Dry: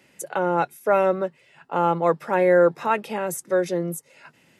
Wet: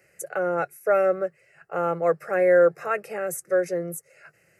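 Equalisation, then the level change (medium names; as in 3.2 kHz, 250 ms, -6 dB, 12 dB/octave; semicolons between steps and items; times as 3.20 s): static phaser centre 940 Hz, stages 6; 0.0 dB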